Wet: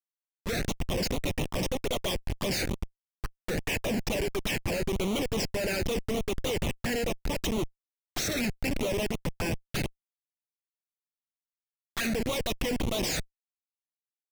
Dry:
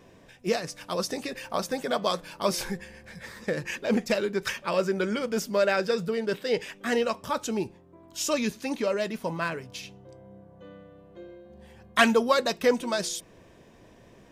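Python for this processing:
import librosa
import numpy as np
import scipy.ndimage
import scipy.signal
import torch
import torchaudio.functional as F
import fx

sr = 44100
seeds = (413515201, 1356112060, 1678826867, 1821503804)

y = fx.weighting(x, sr, curve='D')
y = fx.schmitt(y, sr, flips_db=-26.0)
y = fx.env_flanger(y, sr, rest_ms=10.4, full_db=-25.0)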